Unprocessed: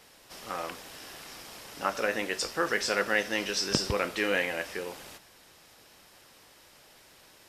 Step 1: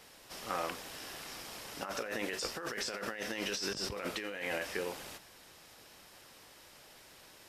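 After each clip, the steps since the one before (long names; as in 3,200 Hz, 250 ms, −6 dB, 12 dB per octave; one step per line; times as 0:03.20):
compressor whose output falls as the input rises −34 dBFS, ratio −1
level −4 dB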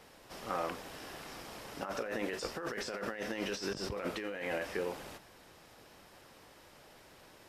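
high-shelf EQ 2,000 Hz −9.5 dB
in parallel at −10.5 dB: soft clipping −37.5 dBFS, distortion −10 dB
on the sum: level +1 dB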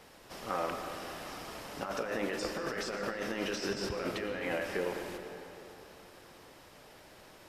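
convolution reverb RT60 3.2 s, pre-delay 75 ms, DRR 5.5 dB
level +1.5 dB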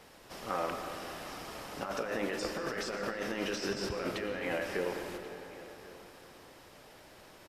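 single-tap delay 1,086 ms −19 dB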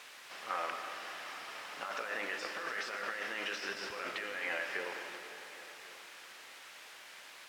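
bit-depth reduction 8 bits, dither triangular
resonant band-pass 2,000 Hz, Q 0.98
level +3 dB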